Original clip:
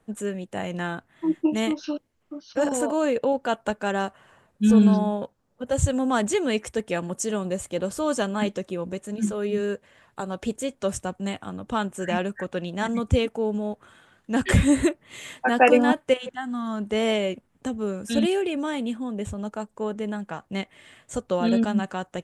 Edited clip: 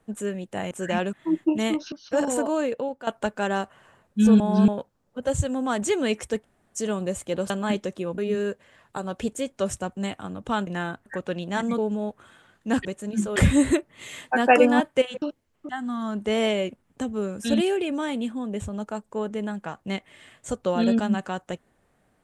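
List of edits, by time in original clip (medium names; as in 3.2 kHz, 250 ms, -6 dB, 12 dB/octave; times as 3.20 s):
0.71–1.10 s: swap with 11.90–12.32 s
1.89–2.36 s: move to 16.34 s
2.88–3.51 s: fade out, to -13 dB
4.84–5.12 s: reverse
5.77–6.26 s: gain -3 dB
6.86–7.21 s: room tone, crossfade 0.06 s
7.94–8.22 s: delete
8.90–9.41 s: move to 14.48 s
13.04–13.41 s: delete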